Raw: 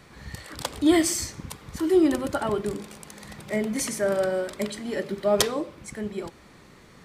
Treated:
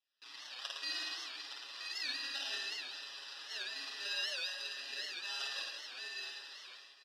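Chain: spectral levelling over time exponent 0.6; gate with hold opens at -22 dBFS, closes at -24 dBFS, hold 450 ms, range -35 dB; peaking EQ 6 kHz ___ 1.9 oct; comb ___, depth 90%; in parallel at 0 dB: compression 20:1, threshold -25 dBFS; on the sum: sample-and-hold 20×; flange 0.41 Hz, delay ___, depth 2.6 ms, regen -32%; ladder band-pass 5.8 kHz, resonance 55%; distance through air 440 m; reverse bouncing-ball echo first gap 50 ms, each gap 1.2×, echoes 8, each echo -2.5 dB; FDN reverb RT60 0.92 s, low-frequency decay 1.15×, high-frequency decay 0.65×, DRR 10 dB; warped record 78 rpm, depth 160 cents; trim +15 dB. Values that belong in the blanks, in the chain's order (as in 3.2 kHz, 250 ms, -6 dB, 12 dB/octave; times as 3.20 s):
-7.5 dB, 7.3 ms, 0.3 ms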